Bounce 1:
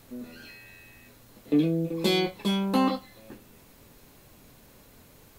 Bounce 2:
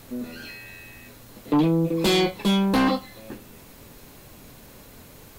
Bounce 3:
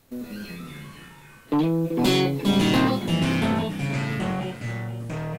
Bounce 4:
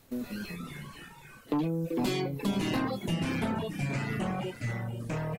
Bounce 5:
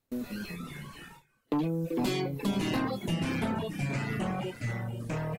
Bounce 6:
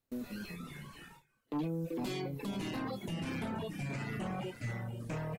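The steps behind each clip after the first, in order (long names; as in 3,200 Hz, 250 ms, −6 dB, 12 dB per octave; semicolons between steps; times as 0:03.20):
sine wavefolder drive 8 dB, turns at −11 dBFS; level −4.5 dB
noise gate −39 dBFS, range −11 dB; delay with pitch and tempo change per echo 165 ms, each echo −3 semitones, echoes 3; single-tap delay 480 ms −12.5 dB; level −2 dB
reverb reduction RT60 0.85 s; downward compressor 3 to 1, threshold −29 dBFS, peak gain reduction 9.5 dB; dynamic equaliser 3,500 Hz, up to −5 dB, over −53 dBFS, Q 3.1
noise gate with hold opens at −39 dBFS
brickwall limiter −25.5 dBFS, peak gain reduction 6.5 dB; level −5 dB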